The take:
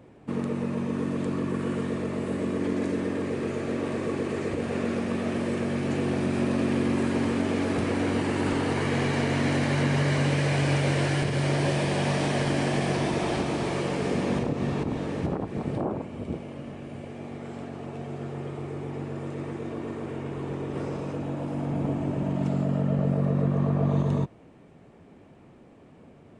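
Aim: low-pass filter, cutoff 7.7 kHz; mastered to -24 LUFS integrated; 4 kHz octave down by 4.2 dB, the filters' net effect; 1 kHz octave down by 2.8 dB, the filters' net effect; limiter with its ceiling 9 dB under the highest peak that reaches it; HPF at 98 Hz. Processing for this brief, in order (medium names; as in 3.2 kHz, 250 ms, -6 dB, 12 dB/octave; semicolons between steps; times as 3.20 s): high-pass 98 Hz; low-pass 7.7 kHz; peaking EQ 1 kHz -3.5 dB; peaking EQ 4 kHz -5.5 dB; trim +8 dB; peak limiter -14.5 dBFS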